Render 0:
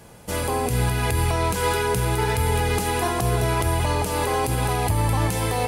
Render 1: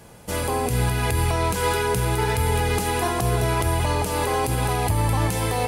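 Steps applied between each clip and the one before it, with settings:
no processing that can be heard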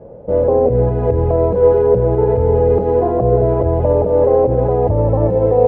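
low-pass with resonance 540 Hz, resonance Q 5.2
level +5 dB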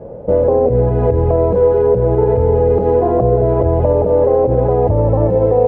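downward compressor 3 to 1, threshold −16 dBFS, peak gain reduction 7.5 dB
level +5.5 dB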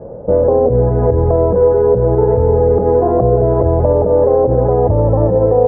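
low-pass filter 1,700 Hz 24 dB per octave
level +1 dB

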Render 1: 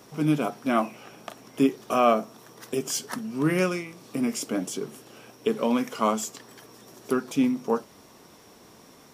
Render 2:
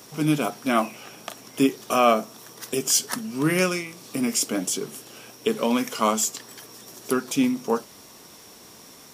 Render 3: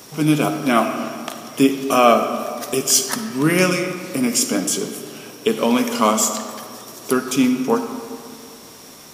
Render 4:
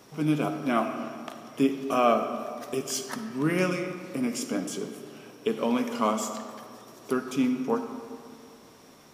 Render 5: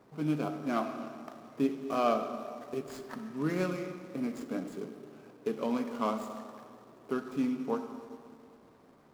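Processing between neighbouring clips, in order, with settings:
high-shelf EQ 2,600 Hz +9.5 dB; level +1 dB
convolution reverb RT60 2.3 s, pre-delay 15 ms, DRR 7 dB; level +5 dB
high-shelf EQ 3,800 Hz −11 dB; level −8.5 dB
running median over 15 samples; level −5.5 dB

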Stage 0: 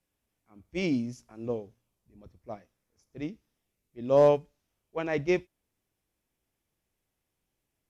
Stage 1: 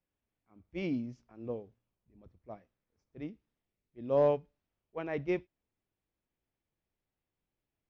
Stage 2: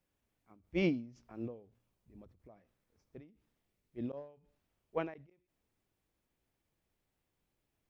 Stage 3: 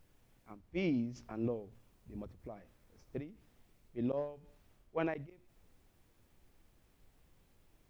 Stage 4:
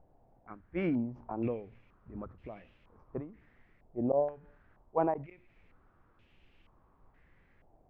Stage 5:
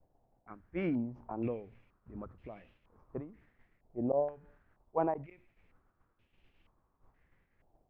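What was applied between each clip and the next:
high-frequency loss of the air 210 metres; level −5.5 dB
gate with flip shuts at −24 dBFS, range −24 dB; every ending faded ahead of time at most 120 dB per second; level +5.5 dB
reversed playback; downward compressor 8 to 1, threshold −42 dBFS, peak gain reduction 15.5 dB; reversed playback; background noise brown −77 dBFS; level +10.5 dB
low-pass on a step sequencer 2.1 Hz 740–2,800 Hz; level +2 dB
downward expander −58 dBFS; level −2 dB

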